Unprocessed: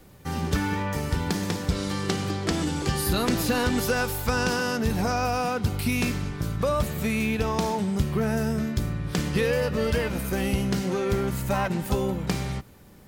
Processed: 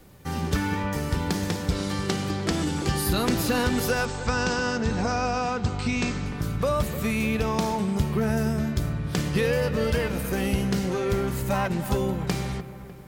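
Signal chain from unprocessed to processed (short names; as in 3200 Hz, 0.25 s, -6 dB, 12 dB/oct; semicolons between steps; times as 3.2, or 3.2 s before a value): 4.05–6.26 Chebyshev low-pass 8400 Hz, order 10; dark delay 0.3 s, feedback 54%, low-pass 2100 Hz, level -13 dB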